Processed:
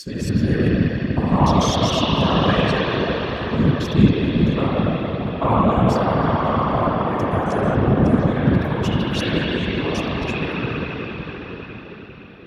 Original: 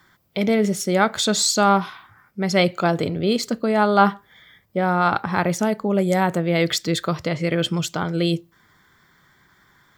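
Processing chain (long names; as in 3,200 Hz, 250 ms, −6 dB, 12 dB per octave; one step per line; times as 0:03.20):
slices reordered back to front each 117 ms, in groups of 8
low-shelf EQ 260 Hz −9.5 dB
noise gate −52 dBFS, range −9 dB
speed change −20%
parametric band 170 Hz +13 dB 0.46 octaves
convolution reverb RT60 5.7 s, pre-delay 47 ms, DRR −9 dB
random phases in short frames
high-pass filter 52 Hz
level −8 dB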